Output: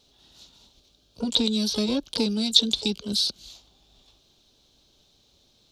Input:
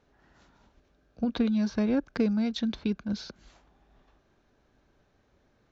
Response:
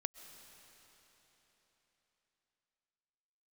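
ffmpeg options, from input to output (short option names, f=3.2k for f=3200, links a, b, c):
-filter_complex "[0:a]asplit=2[a][b];[b]asetrate=88200,aresample=44100,atempo=0.5,volume=-11dB[c];[a][c]amix=inputs=2:normalize=0,highshelf=f=2.6k:t=q:w=3:g=13.5"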